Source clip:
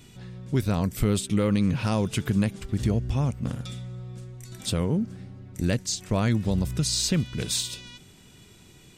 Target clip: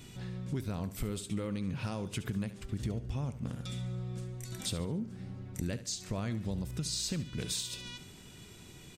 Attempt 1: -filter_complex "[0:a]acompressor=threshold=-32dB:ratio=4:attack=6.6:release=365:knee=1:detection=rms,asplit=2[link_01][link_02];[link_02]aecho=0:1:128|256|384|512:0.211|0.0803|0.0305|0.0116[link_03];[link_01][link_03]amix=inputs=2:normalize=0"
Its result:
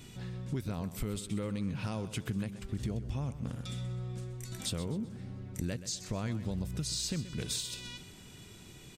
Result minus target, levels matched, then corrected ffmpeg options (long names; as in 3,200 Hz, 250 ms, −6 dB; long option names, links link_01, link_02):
echo 57 ms late
-filter_complex "[0:a]acompressor=threshold=-32dB:ratio=4:attack=6.6:release=365:knee=1:detection=rms,asplit=2[link_01][link_02];[link_02]aecho=0:1:71|142|213|284:0.211|0.0803|0.0305|0.0116[link_03];[link_01][link_03]amix=inputs=2:normalize=0"